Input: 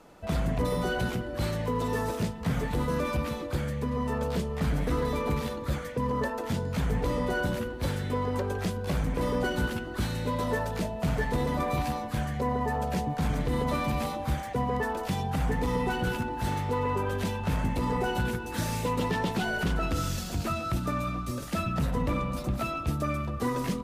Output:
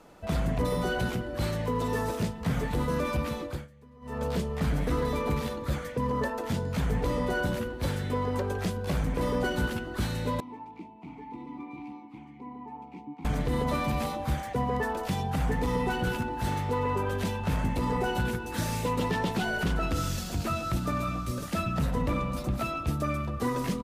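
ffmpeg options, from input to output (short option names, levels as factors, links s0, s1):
-filter_complex "[0:a]asettb=1/sr,asplit=3[s0][s1][s2];[s0]atrim=end=10.404[s3];[s1]atrim=start=10.4:end=13.25,asetpts=PTS-STARTPTS,afade=t=in:d=0.004:c=qsin,afade=t=out:st=2.846:d=0.004:c=qsin,asplit=3[s4][s5][s6];[s4]bandpass=f=300:t=q:w=8,volume=1[s7];[s5]bandpass=f=870:t=q:w=8,volume=0.501[s8];[s6]bandpass=f=2240:t=q:w=8,volume=0.355[s9];[s7][s8][s9]amix=inputs=3:normalize=0[s10];[s2]atrim=start=13.246[s11];[s3][s10]acrossfade=d=0.004:c1=hsin:c2=qsin[s12];[s12][s11]acrossfade=d=0.004:c1=qsin:c2=hsin,asplit=2[s13][s14];[s14]afade=t=in:st=19.97:d=0.01,afade=t=out:st=20.92:d=0.01,aecho=0:1:550|1100|1650|2200:0.237137|0.106712|0.0480203|0.0216091[s15];[s13][s15]amix=inputs=2:normalize=0,asplit=3[s16][s17][s18];[s16]atrim=end=3.68,asetpts=PTS-STARTPTS,afade=t=out:st=3.43:d=0.25:silence=0.0707946[s19];[s17]atrim=start=3.68:end=4.01,asetpts=PTS-STARTPTS,volume=0.0708[s20];[s18]atrim=start=4.01,asetpts=PTS-STARTPTS,afade=t=in:d=0.25:silence=0.0707946[s21];[s19][s20][s21]concat=n=3:v=0:a=1"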